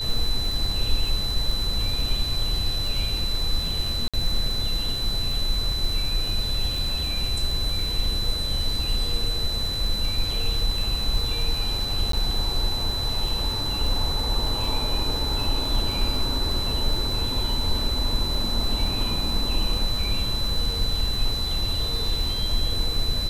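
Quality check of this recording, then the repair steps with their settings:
crackle 38/s -28 dBFS
tone 4000 Hz -27 dBFS
4.08–4.14 gap 56 ms
12.12–12.13 gap 13 ms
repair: de-click; notch 4000 Hz, Q 30; interpolate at 4.08, 56 ms; interpolate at 12.12, 13 ms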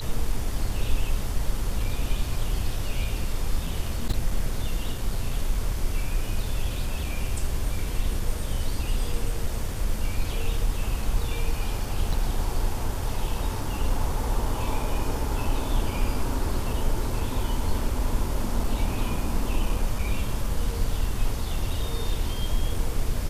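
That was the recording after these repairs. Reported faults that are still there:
none

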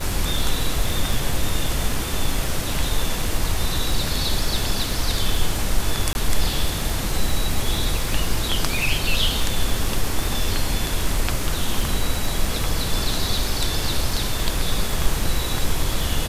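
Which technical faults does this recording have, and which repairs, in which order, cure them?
crackle 38/s -25 dBFS
6.13–6.15 gap 21 ms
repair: de-click; interpolate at 6.13, 21 ms

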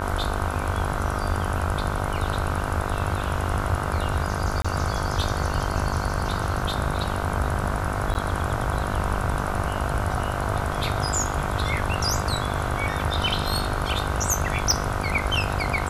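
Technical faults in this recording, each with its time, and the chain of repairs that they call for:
buzz 50 Hz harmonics 31 -30 dBFS
4.62–4.64 gap 25 ms
8.14–8.15 gap 9.6 ms
14.71 pop -10 dBFS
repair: de-click; de-hum 50 Hz, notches 31; interpolate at 4.62, 25 ms; interpolate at 8.14, 9.6 ms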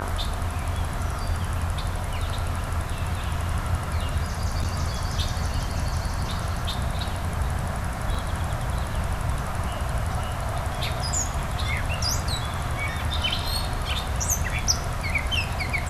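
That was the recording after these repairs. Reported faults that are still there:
14.71 pop

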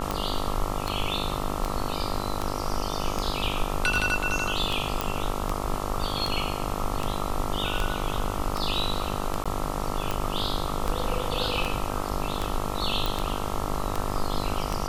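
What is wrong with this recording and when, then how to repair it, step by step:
buzz 50 Hz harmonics 27 -32 dBFS
tick 78 rpm -13 dBFS
5.01 pop
9.44–9.46 gap 16 ms
13.06 pop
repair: de-click; de-hum 50 Hz, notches 27; interpolate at 9.44, 16 ms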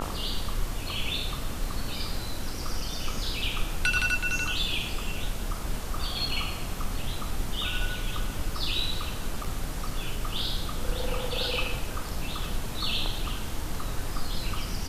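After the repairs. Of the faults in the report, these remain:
none

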